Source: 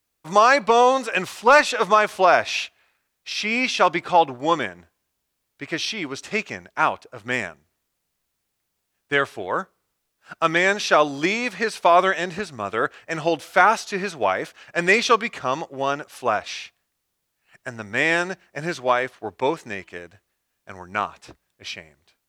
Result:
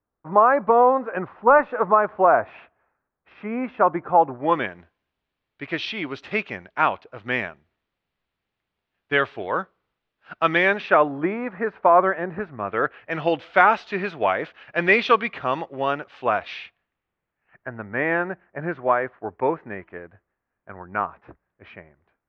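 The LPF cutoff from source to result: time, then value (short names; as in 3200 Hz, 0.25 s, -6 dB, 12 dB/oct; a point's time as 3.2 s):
LPF 24 dB/oct
4.25 s 1400 Hz
4.68 s 3500 Hz
10.61 s 3500 Hz
11.2 s 1600 Hz
12.31 s 1600 Hz
13.18 s 3300 Hz
16.56 s 3300 Hz
17.72 s 1800 Hz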